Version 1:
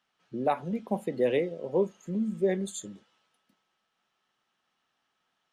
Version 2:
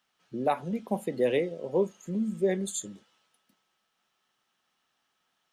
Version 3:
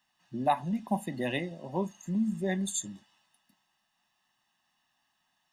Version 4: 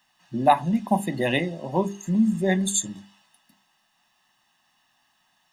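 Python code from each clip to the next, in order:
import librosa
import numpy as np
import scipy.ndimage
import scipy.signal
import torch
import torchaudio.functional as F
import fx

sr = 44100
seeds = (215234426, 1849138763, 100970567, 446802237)

y1 = fx.high_shelf(x, sr, hz=5500.0, db=8.0)
y2 = y1 + 0.91 * np.pad(y1, (int(1.1 * sr / 1000.0), 0))[:len(y1)]
y2 = F.gain(torch.from_numpy(y2), -2.0).numpy()
y3 = fx.hum_notches(y2, sr, base_hz=50, count=8)
y3 = F.gain(torch.from_numpy(y3), 9.0).numpy()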